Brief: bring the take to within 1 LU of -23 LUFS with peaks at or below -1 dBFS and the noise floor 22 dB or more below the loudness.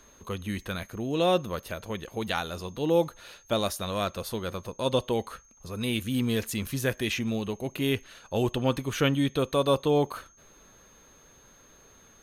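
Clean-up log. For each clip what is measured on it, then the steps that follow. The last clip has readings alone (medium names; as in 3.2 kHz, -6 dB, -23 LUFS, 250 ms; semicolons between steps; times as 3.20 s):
steady tone 6.4 kHz; tone level -57 dBFS; loudness -29.0 LUFS; peak level -10.5 dBFS; loudness target -23.0 LUFS
-> band-stop 6.4 kHz, Q 30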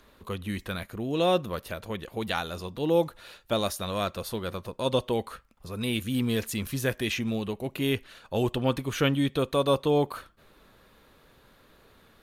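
steady tone not found; loudness -29.0 LUFS; peak level -10.5 dBFS; loudness target -23.0 LUFS
-> trim +6 dB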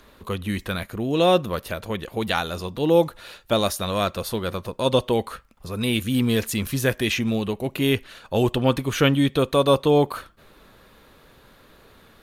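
loudness -23.0 LUFS; peak level -4.5 dBFS; noise floor -53 dBFS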